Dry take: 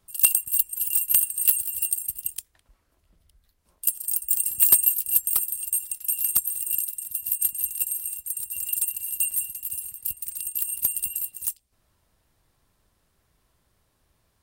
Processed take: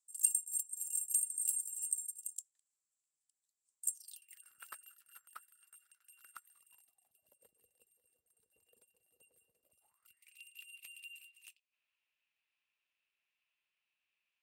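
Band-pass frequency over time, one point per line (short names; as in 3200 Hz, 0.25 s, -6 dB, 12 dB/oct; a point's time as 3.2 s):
band-pass, Q 8.3
3.91 s 7600 Hz
4.45 s 1400 Hz
6.41 s 1400 Hz
7.49 s 480 Hz
9.63 s 480 Hz
10.31 s 2600 Hz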